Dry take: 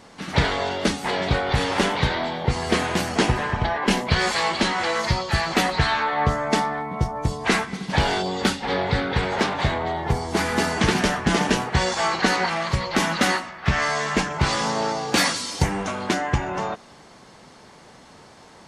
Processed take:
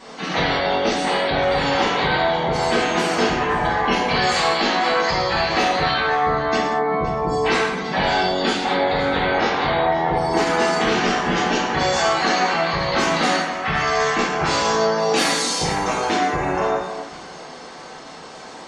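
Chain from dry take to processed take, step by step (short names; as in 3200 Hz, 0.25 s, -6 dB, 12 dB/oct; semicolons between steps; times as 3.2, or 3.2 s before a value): spectral gate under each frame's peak -25 dB strong; low shelf 210 Hz -11.5 dB; compressor 3:1, threshold -30 dBFS, peak gain reduction 10.5 dB; on a send: echo with dull and thin repeats by turns 0.259 s, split 1300 Hz, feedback 50%, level -10 dB; on the sum: non-linear reverb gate 0.25 s falling, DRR -7.5 dB; gain +3 dB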